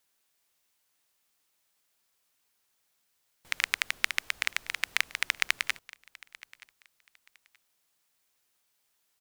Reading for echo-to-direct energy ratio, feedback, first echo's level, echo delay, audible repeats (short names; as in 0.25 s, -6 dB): -22.0 dB, 23%, -22.0 dB, 0.926 s, 2